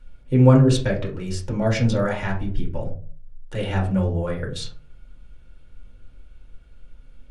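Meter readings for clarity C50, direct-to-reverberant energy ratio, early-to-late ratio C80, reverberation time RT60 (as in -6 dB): 9.0 dB, -1.5 dB, 14.0 dB, 0.45 s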